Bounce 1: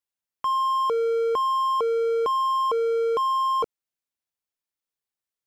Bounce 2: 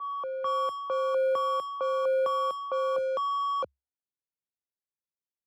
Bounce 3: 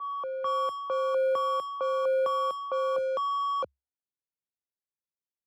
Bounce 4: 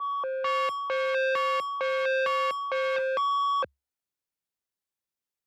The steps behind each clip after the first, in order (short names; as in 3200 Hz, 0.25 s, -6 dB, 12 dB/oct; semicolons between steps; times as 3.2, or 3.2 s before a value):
reverse echo 0.662 s -4.5 dB; frequency shift +68 Hz; low-pass opened by the level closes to 510 Hz, open at -18 dBFS; gain -6 dB
nothing audible
core saturation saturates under 1600 Hz; gain +4 dB